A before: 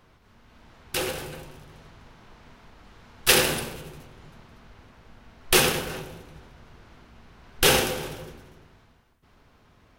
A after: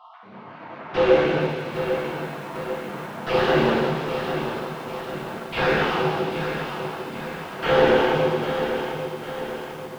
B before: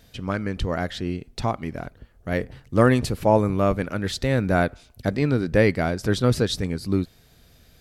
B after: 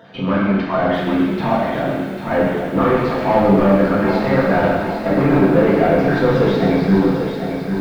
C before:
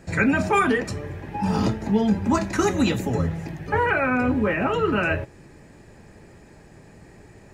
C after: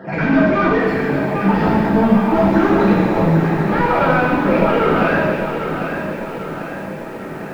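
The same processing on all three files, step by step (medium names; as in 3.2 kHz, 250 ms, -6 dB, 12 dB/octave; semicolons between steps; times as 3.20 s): random holes in the spectrogram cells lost 31%; high-pass 140 Hz 24 dB/octave; bass shelf 220 Hz +7 dB; hum notches 60/120/180/240/300/360 Hz; AM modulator 100 Hz, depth 15%; overdrive pedal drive 34 dB, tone 2.6 kHz, clips at -3.5 dBFS; tape spacing loss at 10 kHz 42 dB; feedback echo behind a high-pass 133 ms, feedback 84%, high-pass 3.5 kHz, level -7 dB; gated-style reverb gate 430 ms falling, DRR -5.5 dB; bit-crushed delay 796 ms, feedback 55%, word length 6-bit, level -8 dB; trim -6.5 dB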